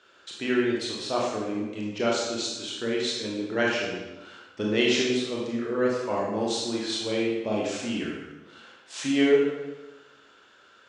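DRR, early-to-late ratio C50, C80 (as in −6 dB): −3.5 dB, 0.5 dB, 3.0 dB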